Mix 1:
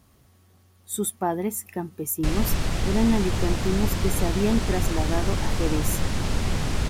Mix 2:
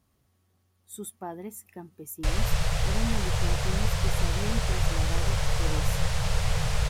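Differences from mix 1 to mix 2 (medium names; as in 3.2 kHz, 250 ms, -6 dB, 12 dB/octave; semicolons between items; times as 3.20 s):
speech -12.0 dB; background: add Chebyshev band-stop 170–440 Hz, order 5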